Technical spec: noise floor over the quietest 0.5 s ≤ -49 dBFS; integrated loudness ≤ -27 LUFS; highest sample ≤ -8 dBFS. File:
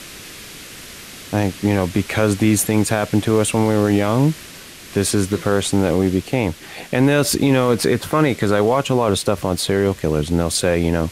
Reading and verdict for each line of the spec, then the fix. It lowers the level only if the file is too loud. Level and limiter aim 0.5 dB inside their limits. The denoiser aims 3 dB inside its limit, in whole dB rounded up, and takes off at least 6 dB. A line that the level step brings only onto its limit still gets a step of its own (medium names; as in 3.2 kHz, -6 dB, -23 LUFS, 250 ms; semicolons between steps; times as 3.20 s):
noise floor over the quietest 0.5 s -38 dBFS: fail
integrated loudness -18.0 LUFS: fail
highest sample -5.0 dBFS: fail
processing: noise reduction 6 dB, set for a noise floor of -38 dBFS; trim -9.5 dB